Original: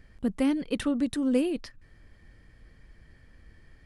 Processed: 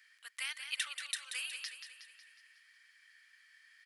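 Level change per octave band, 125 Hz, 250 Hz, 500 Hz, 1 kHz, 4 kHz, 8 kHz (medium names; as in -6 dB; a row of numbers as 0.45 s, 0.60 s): under -40 dB, under -40 dB, -40.0 dB, -12.0 dB, +4.0 dB, +4.0 dB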